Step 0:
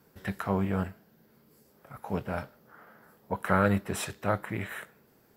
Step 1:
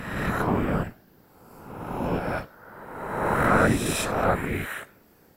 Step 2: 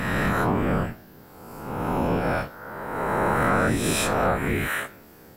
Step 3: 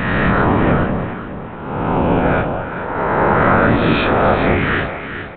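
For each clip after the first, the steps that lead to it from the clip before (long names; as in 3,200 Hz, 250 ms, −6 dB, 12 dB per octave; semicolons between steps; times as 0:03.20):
peak hold with a rise ahead of every peak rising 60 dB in 1.47 s; random phases in short frames; level +2.5 dB
every bin's largest magnitude spread in time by 60 ms; downward compressor 3 to 1, threshold −26 dBFS, peak gain reduction 10.5 dB; level +4.5 dB
on a send: delay that swaps between a low-pass and a high-pass 209 ms, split 1,100 Hz, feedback 60%, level −4.5 dB; on the sum: downsampling to 8,000 Hz; level +8 dB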